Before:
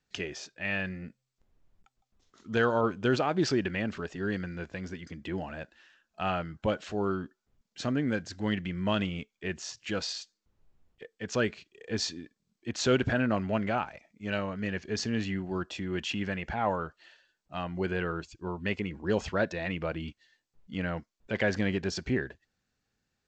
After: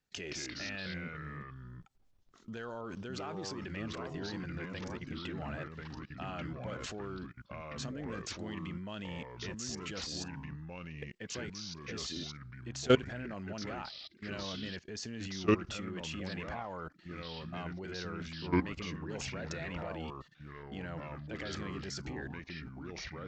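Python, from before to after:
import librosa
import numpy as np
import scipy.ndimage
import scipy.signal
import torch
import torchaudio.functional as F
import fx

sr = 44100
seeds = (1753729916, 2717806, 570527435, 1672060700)

y = fx.dynamic_eq(x, sr, hz=6900.0, q=0.83, threshold_db=-53.0, ratio=4.0, max_db=7)
y = fx.level_steps(y, sr, step_db=22)
y = fx.echo_pitch(y, sr, ms=143, semitones=-3, count=2, db_per_echo=-3.0)
y = y * librosa.db_to_amplitude(2.0)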